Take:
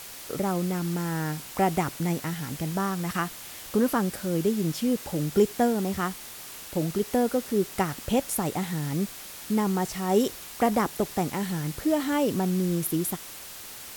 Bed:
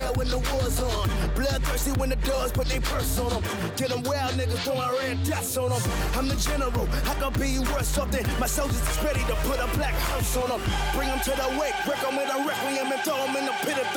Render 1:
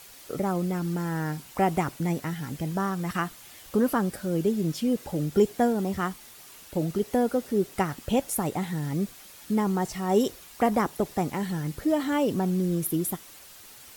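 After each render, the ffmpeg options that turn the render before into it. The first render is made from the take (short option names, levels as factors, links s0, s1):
-af "afftdn=nr=8:nf=-42"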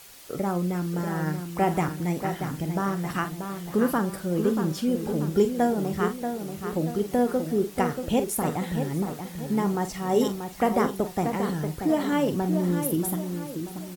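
-filter_complex "[0:a]asplit=2[s0][s1];[s1]adelay=45,volume=0.282[s2];[s0][s2]amix=inputs=2:normalize=0,asplit=2[s3][s4];[s4]adelay=634,lowpass=f=2300:p=1,volume=0.447,asplit=2[s5][s6];[s6]adelay=634,lowpass=f=2300:p=1,volume=0.44,asplit=2[s7][s8];[s8]adelay=634,lowpass=f=2300:p=1,volume=0.44,asplit=2[s9][s10];[s10]adelay=634,lowpass=f=2300:p=1,volume=0.44,asplit=2[s11][s12];[s12]adelay=634,lowpass=f=2300:p=1,volume=0.44[s13];[s5][s7][s9][s11][s13]amix=inputs=5:normalize=0[s14];[s3][s14]amix=inputs=2:normalize=0"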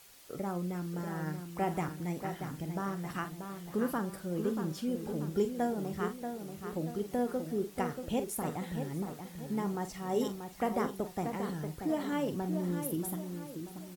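-af "volume=0.355"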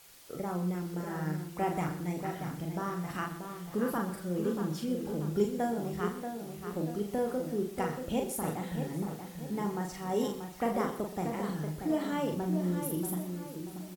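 -filter_complex "[0:a]asplit=2[s0][s1];[s1]adelay=39,volume=0.596[s2];[s0][s2]amix=inputs=2:normalize=0,aecho=1:1:124:0.211"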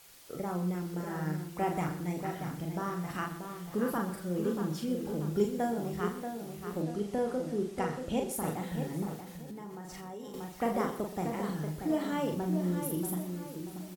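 -filter_complex "[0:a]asettb=1/sr,asplit=3[s0][s1][s2];[s0]atrim=end=6.824[s3];[s1]atrim=start=6.82:end=8.31,asetpts=PTS-STARTPTS,afade=t=in:d=0.004:c=qsin,afade=t=out:st=1.486:d=0.004:c=qsin,lowpass=10000[s4];[s2]atrim=start=8.306[s5];[s3][s4]acrossfade=d=0.004:c1=hsin:c2=qsin[s6];[s6][s5]acrossfade=d=0.004:c1=qsin:c2=hsin,asettb=1/sr,asplit=3[s7][s8][s9];[s7]atrim=end=9.194[s10];[s8]atrim=start=9.19:end=10.34,asetpts=PTS-STARTPTS,afade=t=in:d=0.004:c=qsin,afade=t=out:st=1.146:d=0.004:c=qsin,acompressor=threshold=0.01:ratio=8:attack=3.2:release=140:knee=1:detection=peak[s11];[s9]atrim=start=10.336[s12];[s10][s11]acrossfade=d=0.004:c1=hsin:c2=qsin[s13];[s13][s12]acrossfade=d=0.004:c1=qsin:c2=hsin"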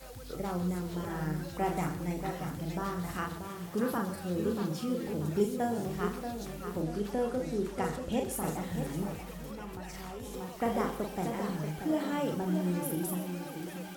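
-filter_complex "[1:a]volume=0.0891[s0];[0:a][s0]amix=inputs=2:normalize=0"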